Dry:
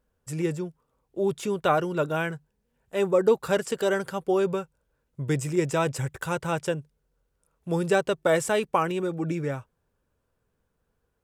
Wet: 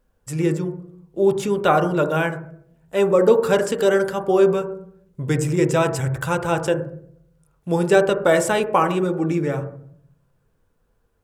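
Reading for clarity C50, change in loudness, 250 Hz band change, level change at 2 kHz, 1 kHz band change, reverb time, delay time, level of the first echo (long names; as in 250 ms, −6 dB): 11.0 dB, +7.0 dB, +7.0 dB, +5.5 dB, +6.5 dB, 0.65 s, no echo audible, no echo audible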